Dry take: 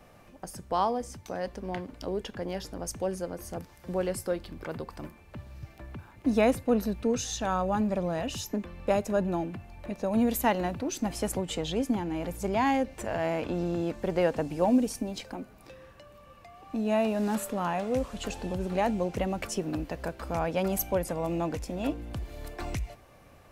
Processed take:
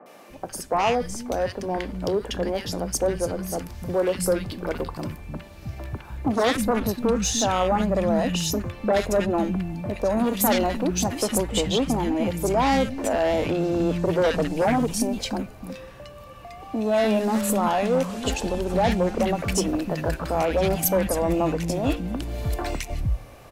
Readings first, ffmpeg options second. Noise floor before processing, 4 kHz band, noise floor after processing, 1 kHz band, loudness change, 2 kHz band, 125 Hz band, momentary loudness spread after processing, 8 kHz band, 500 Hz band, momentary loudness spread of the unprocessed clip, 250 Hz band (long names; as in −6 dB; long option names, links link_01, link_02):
−55 dBFS, +10.0 dB, −44 dBFS, +6.0 dB, +6.0 dB, +7.0 dB, +7.5 dB, 12 LU, +10.0 dB, +6.5 dB, 14 LU, +5.0 dB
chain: -filter_complex "[0:a]aeval=exprs='0.266*sin(PI/2*3.16*val(0)/0.266)':channel_layout=same,acrossover=split=220|1500[link_01][link_02][link_03];[link_03]adelay=60[link_04];[link_01]adelay=300[link_05];[link_05][link_02][link_04]amix=inputs=3:normalize=0,volume=-3.5dB"